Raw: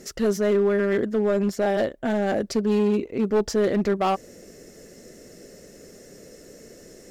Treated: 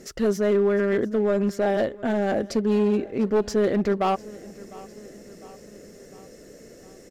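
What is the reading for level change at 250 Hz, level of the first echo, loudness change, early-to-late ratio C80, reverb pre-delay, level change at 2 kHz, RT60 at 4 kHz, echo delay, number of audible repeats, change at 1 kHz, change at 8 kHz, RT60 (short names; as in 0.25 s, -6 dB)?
0.0 dB, -21.0 dB, 0.0 dB, none, none, -1.0 dB, none, 0.703 s, 3, 0.0 dB, -3.0 dB, none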